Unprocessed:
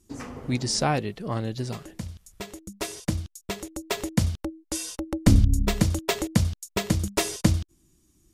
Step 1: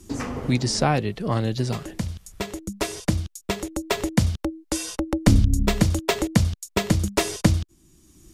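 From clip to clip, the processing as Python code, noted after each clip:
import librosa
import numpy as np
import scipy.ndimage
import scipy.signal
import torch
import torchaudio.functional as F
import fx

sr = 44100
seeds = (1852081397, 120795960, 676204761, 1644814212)

y = fx.high_shelf(x, sr, hz=6900.0, db=-4.0)
y = fx.band_squash(y, sr, depth_pct=40)
y = y * librosa.db_to_amplitude(4.0)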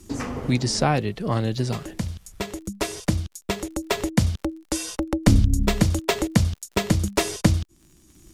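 y = fx.dmg_crackle(x, sr, seeds[0], per_s=62.0, level_db=-43.0)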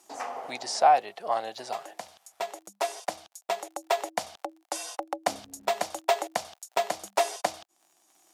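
y = fx.highpass_res(x, sr, hz=730.0, q=5.2)
y = y * librosa.db_to_amplitude(-6.5)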